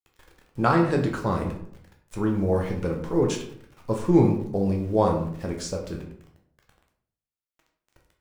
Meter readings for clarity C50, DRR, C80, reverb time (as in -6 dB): 6.5 dB, 0.5 dB, 10.0 dB, 0.60 s